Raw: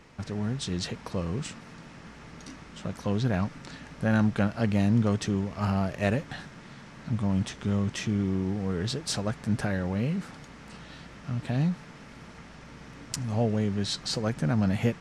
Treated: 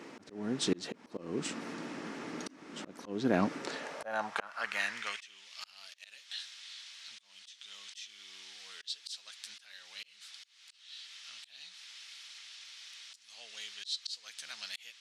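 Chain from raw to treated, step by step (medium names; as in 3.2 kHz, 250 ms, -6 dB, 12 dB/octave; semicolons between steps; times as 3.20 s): high-pass sweep 300 Hz -> 3.6 kHz, 3.43–5.51 s; slow attack 459 ms; trim +4 dB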